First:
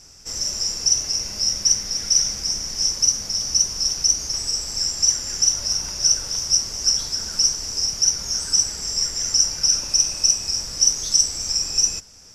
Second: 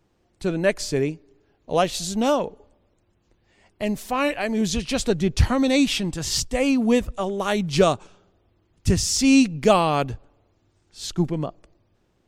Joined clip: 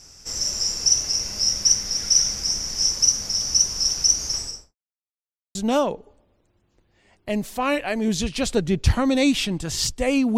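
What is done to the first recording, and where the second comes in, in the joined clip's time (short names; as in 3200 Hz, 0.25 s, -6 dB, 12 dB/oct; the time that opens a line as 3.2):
first
4.32–4.75 studio fade out
4.75–5.55 mute
5.55 switch to second from 2.08 s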